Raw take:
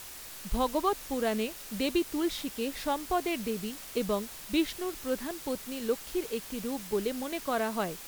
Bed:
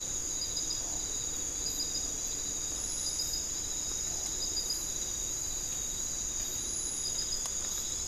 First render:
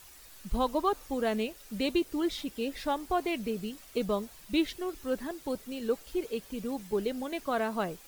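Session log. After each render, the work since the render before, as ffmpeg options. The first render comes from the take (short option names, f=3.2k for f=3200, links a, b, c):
-af "afftdn=nr=10:nf=-45"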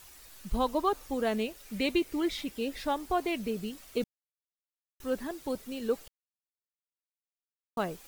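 -filter_complex "[0:a]asettb=1/sr,asplit=3[a][b][c];[a]atrim=end=1.654[d];[b]atrim=start=1.65:end=2.52,asetpts=PTS-STARTPTS,afade=t=in:d=0.004:c=qsin,afade=t=out:st=0.866:d=0.004:c=qsin,equalizer=f=2.2k:w=3.5:g=7[e];[c]atrim=start=2.516[f];[d][e]acrossfade=d=0.004:c1=hsin:c2=qsin[g];[g][f]acrossfade=d=0.004:c1=qsin:c2=hsin,asplit=5[h][i][j][k][l];[h]atrim=end=4.04,asetpts=PTS-STARTPTS,afade=t=out:st=4.036:d=0.004:c=hsin[m];[i]atrim=start=4.04:end=5,asetpts=PTS-STARTPTS,volume=0[n];[j]atrim=start=5:end=6.08,asetpts=PTS-STARTPTS,afade=t=in:d=0.004:c=hsin,afade=t=out:st=1.076:d=0.004:c=hsin[o];[k]atrim=start=6.08:end=7.77,asetpts=PTS-STARTPTS,volume=0[p];[l]atrim=start=7.77,asetpts=PTS-STARTPTS,afade=t=in:d=0.004:c=hsin[q];[m][n][o][p][q]concat=n=5:v=0:a=1"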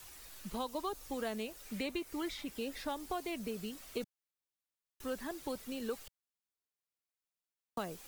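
-filter_complex "[0:a]acrossover=split=170|750|1800|4000[a][b][c][d][e];[a]acompressor=threshold=-53dB:ratio=4[f];[b]acompressor=threshold=-41dB:ratio=4[g];[c]acompressor=threshold=-44dB:ratio=4[h];[d]acompressor=threshold=-54dB:ratio=4[i];[e]acompressor=threshold=-49dB:ratio=4[j];[f][g][h][i][j]amix=inputs=5:normalize=0"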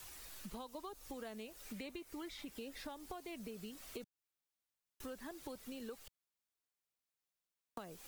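-af "acompressor=threshold=-46dB:ratio=4"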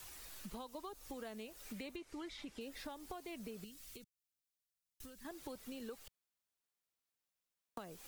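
-filter_complex "[0:a]asettb=1/sr,asplit=3[a][b][c];[a]atrim=end=1.964[d];[b]atrim=start=1.96:end=2.61,asetpts=PTS-STARTPTS,afade=t=in:d=0.004:c=qsin,afade=t=out:st=0.646:d=0.004:c=qsin,lowpass=7.6k[e];[c]atrim=start=2.606[f];[d][e]acrossfade=d=0.004:c1=hsin:c2=qsin[g];[g][f]acrossfade=d=0.004:c1=qsin:c2=hsin,asettb=1/sr,asplit=3[h][i][j];[h]atrim=end=3.644[k];[i]atrim=start=3.64:end=5.25,asetpts=PTS-STARTPTS,afade=t=in:d=0.004:c=qsin,afade=t=out:st=1.606:d=0.004:c=qsin,equalizer=f=730:t=o:w=2.9:g=-14[l];[j]atrim=start=5.246[m];[k][l]acrossfade=d=0.004:c1=hsin:c2=qsin[n];[n][m]acrossfade=d=0.004:c1=qsin:c2=hsin"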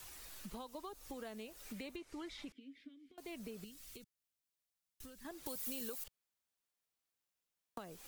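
-filter_complex "[0:a]asettb=1/sr,asplit=3[a][b][c];[a]atrim=end=2.524[d];[b]atrim=start=2.52:end=3.18,asetpts=PTS-STARTPTS,afade=t=in:d=0.004:c=qsin,afade=t=out:st=0.656:d=0.004:c=qsin,asplit=3[e][f][g];[e]bandpass=f=270:t=q:w=8,volume=0dB[h];[f]bandpass=f=2.29k:t=q:w=8,volume=-6dB[i];[g]bandpass=f=3.01k:t=q:w=8,volume=-9dB[j];[h][i][j]amix=inputs=3:normalize=0[k];[c]atrim=start=3.176[l];[d][k]acrossfade=d=0.004:c1=hsin:c2=qsin[m];[m][l]acrossfade=d=0.004:c1=qsin:c2=hsin,asettb=1/sr,asplit=3[n][o][p];[n]atrim=end=5.464[q];[o]atrim=start=5.46:end=6.04,asetpts=PTS-STARTPTS,afade=t=in:d=0.004:c=qsin,afade=t=out:st=0.576:d=0.004:c=qsin,aemphasis=mode=production:type=75kf[r];[p]atrim=start=6.036[s];[q][r]acrossfade=d=0.004:c1=hsin:c2=qsin[t];[t][s]acrossfade=d=0.004:c1=qsin:c2=hsin"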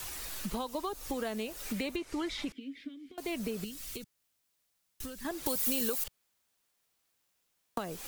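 -af "volume=12dB"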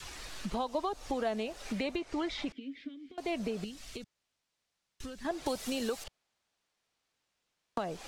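-af "lowpass=5.8k,adynamicequalizer=threshold=0.00224:dfrequency=700:dqfactor=2.2:tfrequency=700:tqfactor=2.2:attack=5:release=100:ratio=0.375:range=3.5:mode=boostabove:tftype=bell"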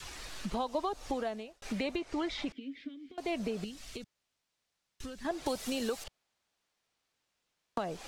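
-filter_complex "[0:a]asplit=2[a][b];[a]atrim=end=1.62,asetpts=PTS-STARTPTS,afade=t=out:st=1.11:d=0.51[c];[b]atrim=start=1.62,asetpts=PTS-STARTPTS,afade=t=in:d=0.004:c=hsin[d];[c][d]concat=n=2:v=0:a=1"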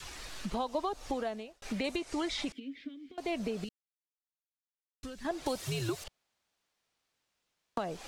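-filter_complex "[0:a]asettb=1/sr,asplit=3[a][b][c];[a]atrim=end=1.844[d];[b]atrim=start=1.84:end=2.6,asetpts=PTS-STARTPTS,afade=t=in:d=0.004:c=qsin,afade=t=out:st=0.756:d=0.004:c=qsin,equalizer=f=9.7k:t=o:w=1.6:g=12[e];[c]atrim=start=2.596[f];[d][e]acrossfade=d=0.004:c1=hsin:c2=qsin[g];[g][f]acrossfade=d=0.004:c1=qsin:c2=hsin,asettb=1/sr,asplit=3[h][i][j];[h]atrim=end=5.614[k];[i]atrim=start=5.61:end=6.02,asetpts=PTS-STARTPTS,afade=t=in:d=0.004:c=qsin,afade=t=out:st=0.406:d=0.004:c=qsin,afreqshift=-110[l];[j]atrim=start=6.016[m];[k][l]acrossfade=d=0.004:c1=hsin:c2=qsin[n];[n][m]acrossfade=d=0.004:c1=qsin:c2=hsin,asplit=3[o][p][q];[o]atrim=end=3.69,asetpts=PTS-STARTPTS,afade=t=out:st=3.686:d=0.004:c=hsin[r];[p]atrim=start=3.69:end=5.03,asetpts=PTS-STARTPTS,volume=0[s];[q]atrim=start=5.03,asetpts=PTS-STARTPTS,afade=t=in:d=0.004:c=hsin[t];[r][s][t]concat=n=3:v=0:a=1"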